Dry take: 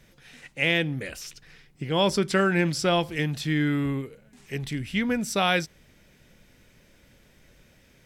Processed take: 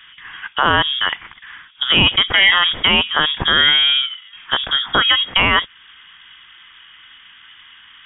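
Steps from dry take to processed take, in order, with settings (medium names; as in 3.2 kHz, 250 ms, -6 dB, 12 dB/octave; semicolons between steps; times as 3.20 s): local Wiener filter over 15 samples; high-pass 1 kHz 6 dB/octave; in parallel at -0.5 dB: compression, threshold -39 dBFS, peak gain reduction 18 dB; on the sum: frequency inversion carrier 3.5 kHz; loudness maximiser +21 dB; trim -1 dB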